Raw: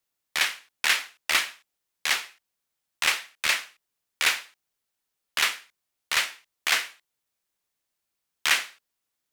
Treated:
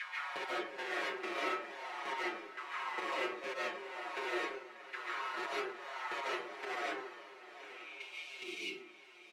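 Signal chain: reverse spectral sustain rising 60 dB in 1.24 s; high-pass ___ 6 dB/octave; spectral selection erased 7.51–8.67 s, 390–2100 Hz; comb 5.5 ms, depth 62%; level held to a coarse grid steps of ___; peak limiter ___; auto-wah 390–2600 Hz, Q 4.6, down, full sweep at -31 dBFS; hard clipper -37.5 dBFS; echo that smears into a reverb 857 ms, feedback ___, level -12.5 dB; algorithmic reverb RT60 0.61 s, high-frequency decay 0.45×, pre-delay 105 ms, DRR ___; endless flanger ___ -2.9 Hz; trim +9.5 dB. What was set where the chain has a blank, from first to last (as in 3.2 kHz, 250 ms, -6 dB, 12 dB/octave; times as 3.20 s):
200 Hz, 20 dB, -11 dBFS, 43%, -6.5 dB, 6.8 ms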